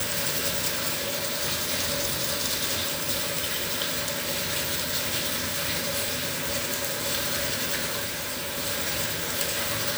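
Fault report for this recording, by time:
8.05–8.58 clipped -27.5 dBFS

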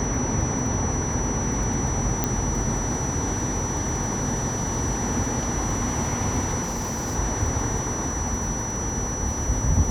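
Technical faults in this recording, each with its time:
crackle 16/s -30 dBFS
tone 5900 Hz -30 dBFS
2.24 pop -7 dBFS
6.63–7.16 clipped -24 dBFS

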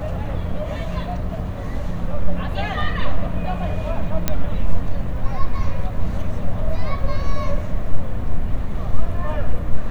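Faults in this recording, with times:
4.28 pop -4 dBFS

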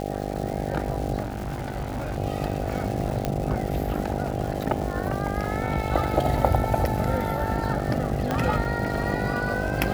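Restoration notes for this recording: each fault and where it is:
buzz 50 Hz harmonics 16 -30 dBFS
crackle 520/s -33 dBFS
1.22–2.18 clipped -25.5 dBFS
3.25 pop -11 dBFS
8.31 pop -12 dBFS

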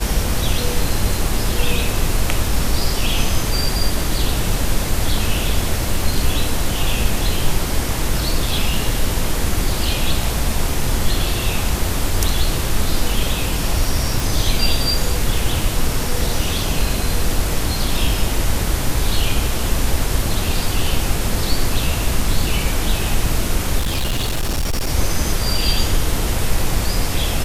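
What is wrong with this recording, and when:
14.2 pop
23.79–24.89 clipped -15.5 dBFS

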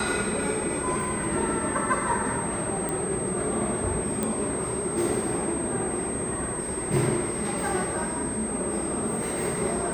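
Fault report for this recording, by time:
tone 8300 Hz -32 dBFS
2.89 pop -16 dBFS
4.23 pop -13 dBFS

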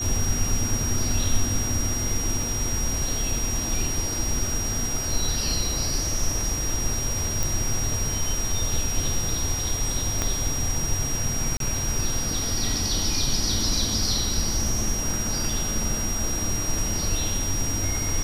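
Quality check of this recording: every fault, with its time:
tone 5700 Hz -28 dBFS
2.43 gap 2.2 ms
7.43 pop
10.22 pop -9 dBFS
11.57–11.6 gap 32 ms
15.5 gap 3.1 ms

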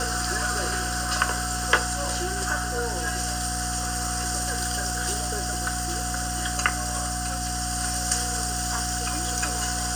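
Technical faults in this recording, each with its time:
hum 60 Hz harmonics 5 -32 dBFS
tone 730 Hz -33 dBFS
4.53–5.83 clipped -20 dBFS

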